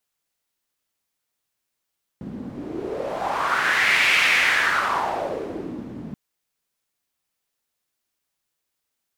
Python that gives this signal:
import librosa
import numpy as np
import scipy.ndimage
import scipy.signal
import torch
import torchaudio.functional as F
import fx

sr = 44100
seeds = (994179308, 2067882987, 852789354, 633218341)

y = fx.wind(sr, seeds[0], length_s=3.93, low_hz=220.0, high_hz=2300.0, q=3.6, gusts=1, swing_db=16.0)